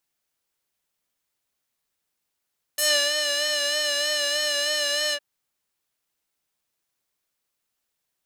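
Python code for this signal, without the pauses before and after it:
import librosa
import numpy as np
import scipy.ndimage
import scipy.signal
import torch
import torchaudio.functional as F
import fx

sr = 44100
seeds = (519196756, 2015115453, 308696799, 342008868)

y = fx.sub_patch_vibrato(sr, seeds[0], note=74, wave='square', wave2='saw', interval_st=0, detune_cents=25, level2_db=-6.5, sub_db=-15.0, noise_db=-27.5, kind='bandpass', cutoff_hz=2400.0, q=1.0, env_oct=2.5, env_decay_s=0.12, env_sustain_pct=40, attack_ms=7.9, decay_s=0.32, sustain_db=-7, release_s=0.06, note_s=2.35, lfo_hz=3.2, vibrato_cents=42)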